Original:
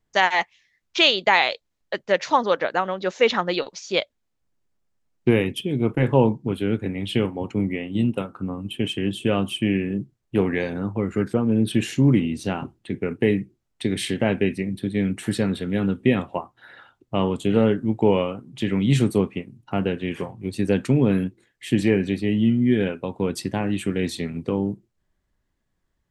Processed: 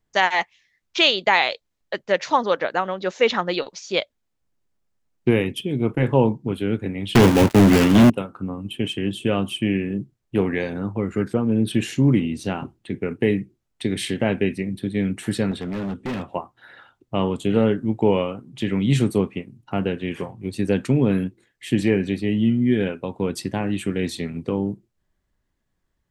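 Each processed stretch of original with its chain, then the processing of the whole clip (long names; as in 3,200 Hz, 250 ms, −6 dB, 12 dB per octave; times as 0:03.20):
0:07.15–0:08.10: gap after every zero crossing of 0.27 ms + high-pass filter 43 Hz + leveller curve on the samples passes 5
0:15.51–0:16.28: low-pass filter 9,700 Hz 24 dB per octave + gain into a clipping stage and back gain 24.5 dB
whole clip: no processing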